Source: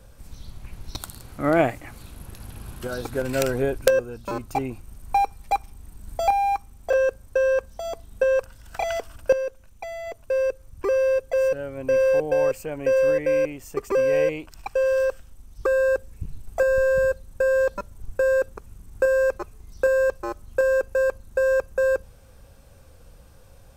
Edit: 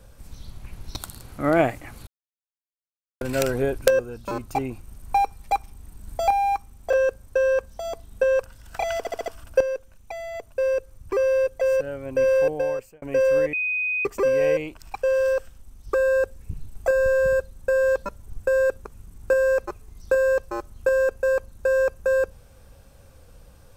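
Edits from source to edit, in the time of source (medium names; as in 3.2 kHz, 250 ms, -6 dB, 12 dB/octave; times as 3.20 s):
2.07–3.21 s: mute
8.98 s: stutter 0.07 s, 5 plays
12.18–12.74 s: fade out
13.25–13.77 s: bleep 2.5 kHz -22 dBFS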